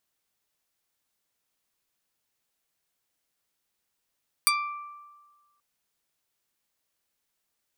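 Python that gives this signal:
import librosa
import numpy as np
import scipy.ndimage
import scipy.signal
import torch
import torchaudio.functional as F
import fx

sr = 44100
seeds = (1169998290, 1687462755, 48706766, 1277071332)

y = fx.pluck(sr, length_s=1.13, note=86, decay_s=1.44, pick=0.31, brightness='medium')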